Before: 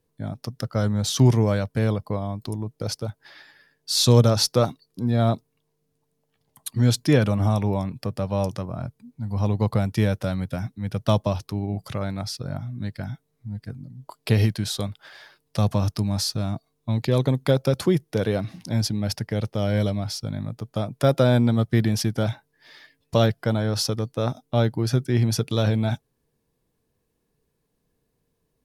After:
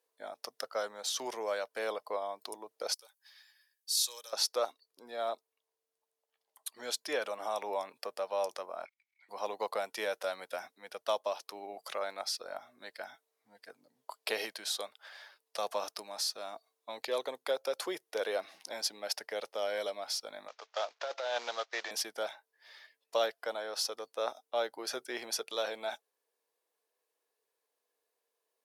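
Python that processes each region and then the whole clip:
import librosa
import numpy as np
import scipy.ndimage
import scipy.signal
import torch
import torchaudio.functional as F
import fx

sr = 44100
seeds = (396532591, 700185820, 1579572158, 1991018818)

y = fx.chain(x, sr, fx.differentiator(),
    fx.notch_comb(f0_hz=690.0), at=(2.94, 4.33))
y = fx.chain(y, sr, fx.air_absorb(metres=75.0),
    fx.level_steps(step_db=18),
    fx.highpass_res(hz=2200.0, q=11.0), at=(8.85, 9.29))
y = fx.chain(y, sr, fx.cvsd(bps=32000),
    fx.highpass(hz=650.0, slope=12),
    fx.over_compress(threshold_db=-29.0, ratio=-1.0), at=(20.48, 21.91))
y = scipy.signal.sosfilt(scipy.signal.butter(4, 500.0, 'highpass', fs=sr, output='sos'), y)
y = fx.rider(y, sr, range_db=3, speed_s=0.5)
y = y * librosa.db_to_amplitude(-5.5)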